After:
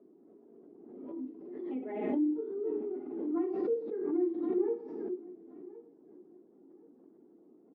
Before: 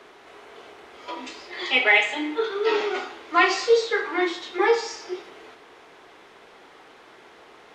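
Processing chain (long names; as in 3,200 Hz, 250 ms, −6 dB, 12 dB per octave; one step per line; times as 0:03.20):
spectral magnitudes quantised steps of 15 dB
flat-topped band-pass 250 Hz, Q 1.9
on a send: repeating echo 1,069 ms, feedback 28%, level −19 dB
on the sum: background raised ahead of every attack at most 39 dB per second
level +1.5 dB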